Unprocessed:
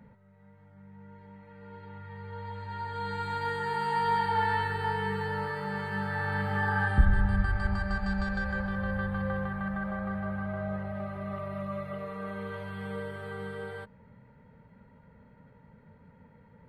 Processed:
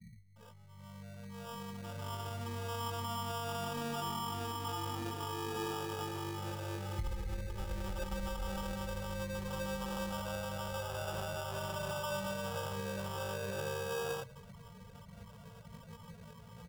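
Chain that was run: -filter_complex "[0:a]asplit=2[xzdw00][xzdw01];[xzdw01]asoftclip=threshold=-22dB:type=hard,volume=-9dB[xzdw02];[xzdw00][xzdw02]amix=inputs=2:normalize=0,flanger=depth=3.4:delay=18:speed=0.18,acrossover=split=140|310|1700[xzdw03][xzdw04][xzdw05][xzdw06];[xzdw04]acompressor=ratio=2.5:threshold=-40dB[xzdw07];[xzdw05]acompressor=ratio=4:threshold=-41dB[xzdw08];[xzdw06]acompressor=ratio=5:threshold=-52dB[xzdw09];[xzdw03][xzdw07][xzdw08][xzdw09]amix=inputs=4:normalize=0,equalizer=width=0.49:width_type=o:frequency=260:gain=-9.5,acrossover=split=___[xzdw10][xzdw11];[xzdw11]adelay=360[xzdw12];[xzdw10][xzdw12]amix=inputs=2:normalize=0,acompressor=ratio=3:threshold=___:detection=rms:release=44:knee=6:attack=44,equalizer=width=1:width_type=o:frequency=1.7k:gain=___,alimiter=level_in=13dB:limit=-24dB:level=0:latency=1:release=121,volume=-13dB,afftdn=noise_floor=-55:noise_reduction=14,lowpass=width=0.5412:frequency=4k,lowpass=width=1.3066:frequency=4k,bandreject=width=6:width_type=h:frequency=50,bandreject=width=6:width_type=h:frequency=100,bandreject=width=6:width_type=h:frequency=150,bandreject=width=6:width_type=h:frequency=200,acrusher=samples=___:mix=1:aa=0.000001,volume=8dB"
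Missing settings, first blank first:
240, -41dB, 4, 21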